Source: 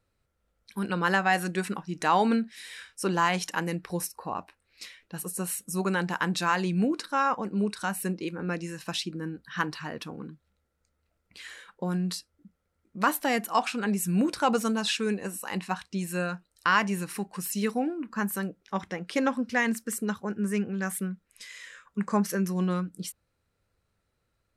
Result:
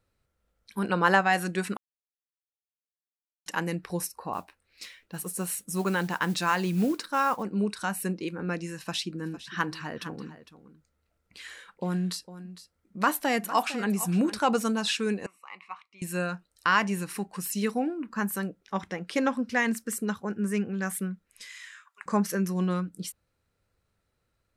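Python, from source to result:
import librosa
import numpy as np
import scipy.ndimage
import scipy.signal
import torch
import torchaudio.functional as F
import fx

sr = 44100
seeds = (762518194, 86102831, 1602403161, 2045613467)

y = fx.peak_eq(x, sr, hz=720.0, db=6.0, octaves=2.0, at=(0.78, 1.21))
y = fx.mod_noise(y, sr, seeds[0], snr_db=24, at=(4.33, 7.43))
y = fx.echo_single(y, sr, ms=456, db=-14.5, at=(9.18, 14.37), fade=0.02)
y = fx.double_bandpass(y, sr, hz=1600.0, octaves=0.9, at=(15.26, 16.02))
y = fx.highpass(y, sr, hz=940.0, slope=24, at=(21.5, 22.06))
y = fx.edit(y, sr, fx.silence(start_s=1.77, length_s=1.69), tone=tone)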